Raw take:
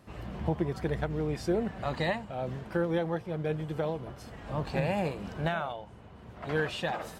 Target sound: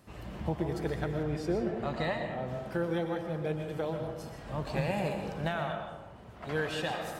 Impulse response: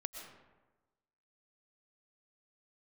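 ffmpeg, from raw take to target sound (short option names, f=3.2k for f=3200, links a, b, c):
-filter_complex "[0:a]asetnsamples=n=441:p=0,asendcmd='1.23 highshelf g -3.5;2.48 highshelf g 6',highshelf=f=5.2k:g=7[a];[1:a]atrim=start_sample=2205[b];[a][b]afir=irnorm=-1:irlink=0"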